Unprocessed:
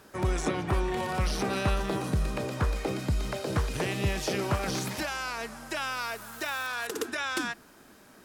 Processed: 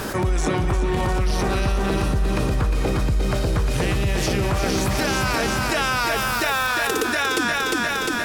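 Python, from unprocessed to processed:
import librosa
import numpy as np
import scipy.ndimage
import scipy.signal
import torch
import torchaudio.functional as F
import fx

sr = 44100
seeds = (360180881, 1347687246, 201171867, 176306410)

y = fx.peak_eq(x, sr, hz=64.0, db=-12.5, octaves=0.23)
y = fx.echo_feedback(y, sr, ms=353, feedback_pct=54, wet_db=-5.5)
y = fx.rider(y, sr, range_db=4, speed_s=0.5)
y = fx.low_shelf(y, sr, hz=94.0, db=9.5)
y = fx.env_flatten(y, sr, amount_pct=70)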